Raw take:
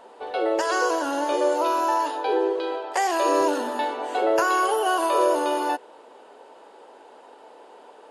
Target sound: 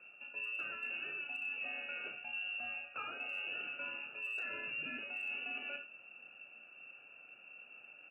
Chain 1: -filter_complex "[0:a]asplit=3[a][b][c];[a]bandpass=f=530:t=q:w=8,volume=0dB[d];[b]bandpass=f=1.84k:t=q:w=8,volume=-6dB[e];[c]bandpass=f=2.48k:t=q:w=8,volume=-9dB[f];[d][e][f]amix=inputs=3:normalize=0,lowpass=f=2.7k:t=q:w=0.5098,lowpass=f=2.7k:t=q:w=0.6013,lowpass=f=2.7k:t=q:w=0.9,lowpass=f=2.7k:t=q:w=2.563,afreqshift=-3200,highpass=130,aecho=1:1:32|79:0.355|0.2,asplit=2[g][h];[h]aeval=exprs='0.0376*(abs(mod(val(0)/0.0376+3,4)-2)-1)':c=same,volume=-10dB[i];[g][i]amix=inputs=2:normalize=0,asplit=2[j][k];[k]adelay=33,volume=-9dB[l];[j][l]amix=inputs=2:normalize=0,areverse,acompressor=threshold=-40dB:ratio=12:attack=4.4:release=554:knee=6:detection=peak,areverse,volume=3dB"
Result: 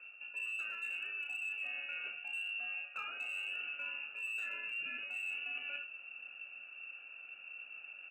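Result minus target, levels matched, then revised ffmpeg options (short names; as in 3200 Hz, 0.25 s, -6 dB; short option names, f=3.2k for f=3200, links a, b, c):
1000 Hz band -3.0 dB
-filter_complex "[0:a]asplit=3[a][b][c];[a]bandpass=f=530:t=q:w=8,volume=0dB[d];[b]bandpass=f=1.84k:t=q:w=8,volume=-6dB[e];[c]bandpass=f=2.48k:t=q:w=8,volume=-9dB[f];[d][e][f]amix=inputs=3:normalize=0,lowpass=f=2.7k:t=q:w=0.5098,lowpass=f=2.7k:t=q:w=0.6013,lowpass=f=2.7k:t=q:w=0.9,lowpass=f=2.7k:t=q:w=2.563,afreqshift=-3200,highpass=130,tiltshelf=f=990:g=8,aecho=1:1:32|79:0.355|0.2,asplit=2[g][h];[h]aeval=exprs='0.0376*(abs(mod(val(0)/0.0376+3,4)-2)-1)':c=same,volume=-10dB[i];[g][i]amix=inputs=2:normalize=0,asplit=2[j][k];[k]adelay=33,volume=-9dB[l];[j][l]amix=inputs=2:normalize=0,areverse,acompressor=threshold=-40dB:ratio=12:attack=4.4:release=554:knee=6:detection=peak,areverse,volume=3dB"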